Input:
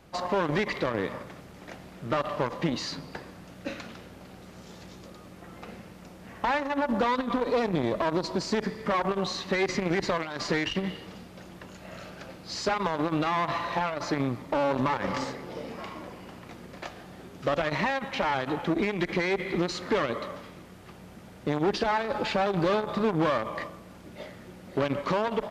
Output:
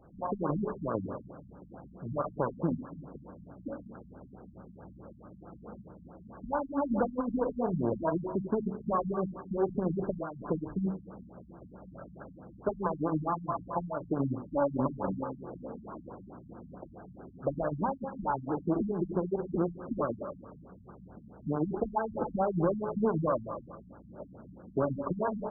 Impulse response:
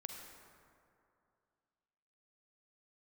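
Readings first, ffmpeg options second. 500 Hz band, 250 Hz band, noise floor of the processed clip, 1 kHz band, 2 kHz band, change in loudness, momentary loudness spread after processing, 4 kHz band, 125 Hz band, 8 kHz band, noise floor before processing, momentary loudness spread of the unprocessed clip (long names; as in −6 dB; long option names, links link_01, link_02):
−4.0 dB, −2.0 dB, −54 dBFS, −6.0 dB, −17.0 dB, −4.5 dB, 20 LU, below −40 dB, −1.5 dB, below −35 dB, −48 dBFS, 20 LU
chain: -filter_complex "[1:a]atrim=start_sample=2205,atrim=end_sample=4410[link_01];[0:a][link_01]afir=irnorm=-1:irlink=0,afftfilt=real='re*lt(b*sr/1024,230*pow(1700/230,0.5+0.5*sin(2*PI*4.6*pts/sr)))':imag='im*lt(b*sr/1024,230*pow(1700/230,0.5+0.5*sin(2*PI*4.6*pts/sr)))':win_size=1024:overlap=0.75,volume=3dB"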